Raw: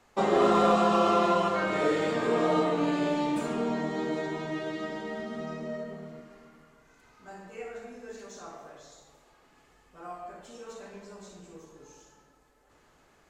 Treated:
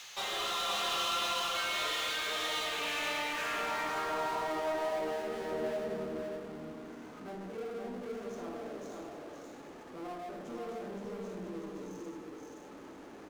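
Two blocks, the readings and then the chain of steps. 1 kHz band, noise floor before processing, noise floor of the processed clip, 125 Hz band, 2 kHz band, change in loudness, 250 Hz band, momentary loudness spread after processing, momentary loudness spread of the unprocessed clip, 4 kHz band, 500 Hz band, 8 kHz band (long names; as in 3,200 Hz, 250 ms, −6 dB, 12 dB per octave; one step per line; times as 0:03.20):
−7.0 dB, −63 dBFS, −50 dBFS, −12.0 dB, +0.5 dB, −8.5 dB, −12.0 dB, 16 LU, 22 LU, +6.5 dB, −8.5 dB, +5.0 dB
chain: thirty-one-band graphic EQ 250 Hz −8 dB, 400 Hz −3 dB, 6,300 Hz +11 dB
band-pass filter sweep 3,500 Hz → 270 Hz, 0:02.49–0:06.10
high-pass filter 66 Hz
parametric band 130 Hz −10.5 dB 0.65 octaves
power curve on the samples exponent 0.5
single-tap delay 520 ms −3.5 dB
one half of a high-frequency compander encoder only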